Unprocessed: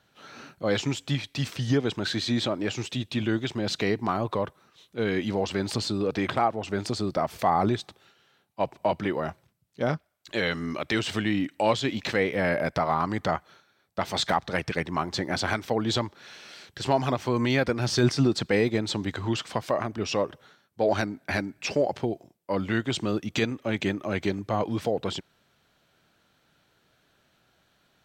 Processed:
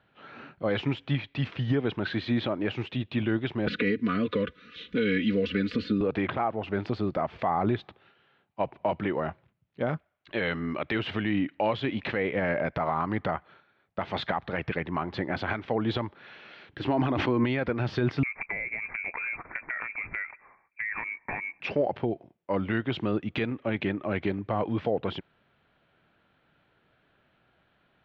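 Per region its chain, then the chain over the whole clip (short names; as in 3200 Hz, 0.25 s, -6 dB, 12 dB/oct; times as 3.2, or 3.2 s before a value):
3.67–6.01 Butterworth band-stop 830 Hz, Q 0.94 + comb 4.1 ms, depth 77% + three-band squash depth 100%
16.7–17.44 bell 300 Hz +12.5 dB 0.34 oct + sustainer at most 47 dB/s
18.23–21.6 inverted band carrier 2500 Hz + compressor 12:1, threshold -28 dBFS
whole clip: LPF 3000 Hz 24 dB/oct; limiter -16.5 dBFS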